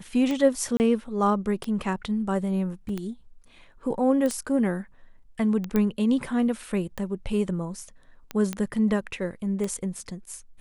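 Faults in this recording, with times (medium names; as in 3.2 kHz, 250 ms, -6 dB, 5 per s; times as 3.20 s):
tick 45 rpm -17 dBFS
0.77–0.80 s: dropout 29 ms
2.89 s: dropout 2.9 ms
4.26 s: pop -17 dBFS
5.76 s: pop -12 dBFS
8.53 s: pop -15 dBFS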